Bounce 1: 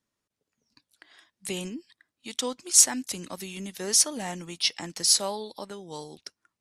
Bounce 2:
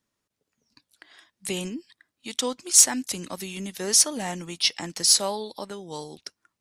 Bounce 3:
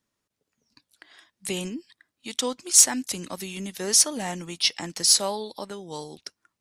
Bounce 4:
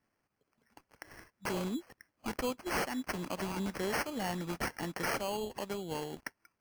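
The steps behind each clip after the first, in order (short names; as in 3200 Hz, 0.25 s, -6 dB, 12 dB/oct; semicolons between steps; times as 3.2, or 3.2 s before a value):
soft clip -6 dBFS, distortion -22 dB; gain +3 dB
nothing audible
compressor 2:1, threshold -33 dBFS, peak gain reduction 12.5 dB; sample-and-hold 12×; limiter -25.5 dBFS, peak gain reduction 10 dB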